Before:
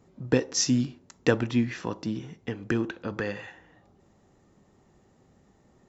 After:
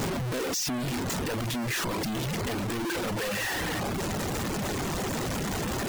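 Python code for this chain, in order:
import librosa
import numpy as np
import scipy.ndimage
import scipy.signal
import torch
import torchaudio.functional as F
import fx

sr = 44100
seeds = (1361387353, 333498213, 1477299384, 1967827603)

y = np.sign(x) * np.sqrt(np.mean(np.square(x)))
y = fx.dereverb_blind(y, sr, rt60_s=0.57)
y = y * 10.0 ** (2.0 / 20.0)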